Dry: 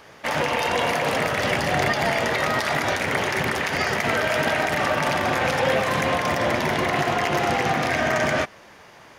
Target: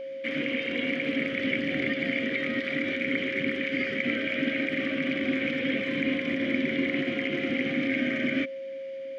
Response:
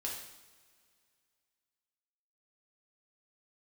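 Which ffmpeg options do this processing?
-filter_complex "[0:a]acrossover=split=3200[a][b];[b]acompressor=threshold=-42dB:ratio=4:attack=1:release=60[c];[a][c]amix=inputs=2:normalize=0,asplit=3[d][e][f];[d]bandpass=f=270:t=q:w=8,volume=0dB[g];[e]bandpass=f=2.29k:t=q:w=8,volume=-6dB[h];[f]bandpass=f=3.01k:t=q:w=8,volume=-9dB[i];[g][h][i]amix=inputs=3:normalize=0,aeval=exprs='val(0)+0.00794*sin(2*PI*540*n/s)':c=same,volume=8dB"

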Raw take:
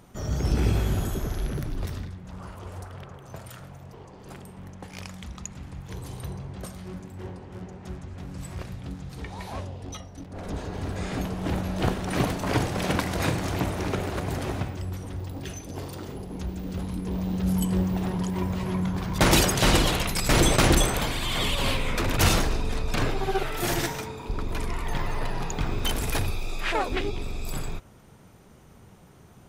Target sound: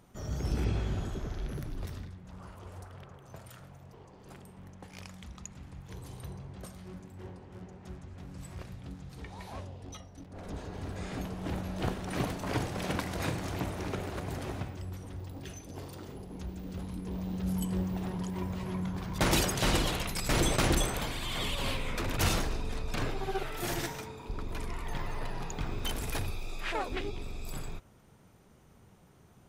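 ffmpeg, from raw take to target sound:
-filter_complex "[0:a]asettb=1/sr,asplit=3[a][b][c];[a]atrim=end=0.644[d];[b]atrim=start=0.64:end=1.49,asetpts=PTS-STARTPTS,afade=t=in:d=0.004:c=qsin,afade=t=out:st=0.846:d=0.004:c=qsin,lowpass=5.8k[e];[c]atrim=start=1.486[f];[d][e]acrossfade=d=0.004:c1=hsin:c2=qsin[g];[g][f]acrossfade=d=0.004:c1=qsin:c2=hsin,volume=-7.5dB"

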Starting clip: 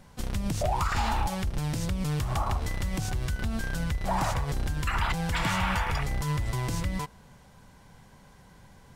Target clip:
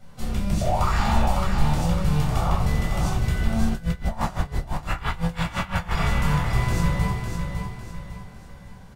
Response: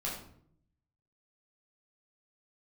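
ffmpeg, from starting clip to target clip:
-filter_complex "[0:a]asplit=2[a][b];[b]adelay=18,volume=-11dB[c];[a][c]amix=inputs=2:normalize=0,aecho=1:1:553|1106|1659|2212|2765:0.501|0.195|0.0762|0.0297|0.0116[d];[1:a]atrim=start_sample=2205[e];[d][e]afir=irnorm=-1:irlink=0,asplit=3[f][g][h];[f]afade=t=out:st=3.69:d=0.02[i];[g]aeval=exprs='val(0)*pow(10,-19*(0.5-0.5*cos(2*PI*5.9*n/s))/20)':c=same,afade=t=in:st=3.69:d=0.02,afade=t=out:st=5.96:d=0.02[j];[h]afade=t=in:st=5.96:d=0.02[k];[i][j][k]amix=inputs=3:normalize=0"

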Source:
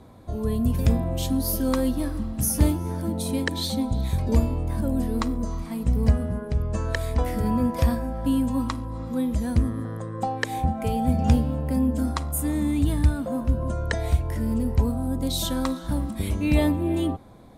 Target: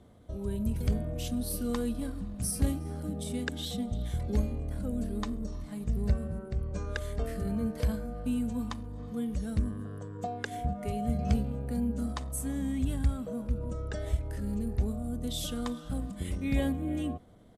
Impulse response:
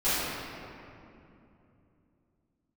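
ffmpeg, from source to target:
-af "bandreject=f=1k:w=6.1,asetrate=40440,aresample=44100,atempo=1.09051,volume=-8dB"

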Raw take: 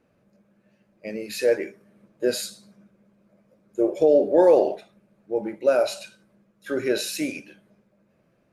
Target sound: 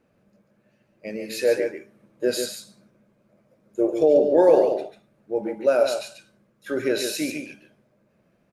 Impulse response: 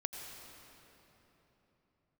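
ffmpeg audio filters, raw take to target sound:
-af "aecho=1:1:142:0.473"

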